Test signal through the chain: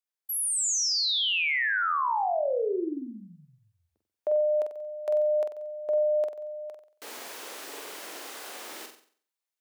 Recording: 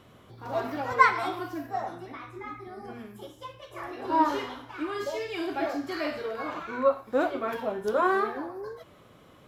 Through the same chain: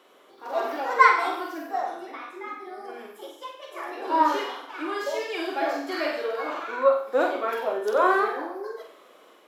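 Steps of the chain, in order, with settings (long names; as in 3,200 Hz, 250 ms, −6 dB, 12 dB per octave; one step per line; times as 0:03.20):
high-pass filter 340 Hz 24 dB per octave
automatic gain control gain up to 3 dB
flutter between parallel walls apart 7.9 metres, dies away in 0.49 s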